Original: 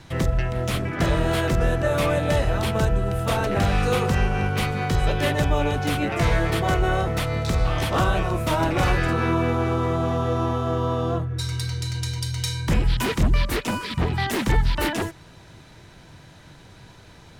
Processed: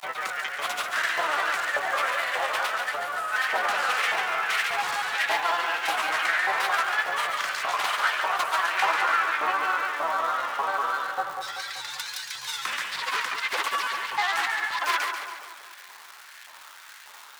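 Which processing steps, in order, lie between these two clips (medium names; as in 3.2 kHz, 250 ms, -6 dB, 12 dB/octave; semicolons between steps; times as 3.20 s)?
self-modulated delay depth 0.093 ms; granulator, pitch spread up and down by 3 st; crackle 330 per s -34 dBFS; LFO high-pass saw up 1.7 Hz 870–1900 Hz; on a send: two-band feedback delay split 1.2 kHz, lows 192 ms, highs 140 ms, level -6 dB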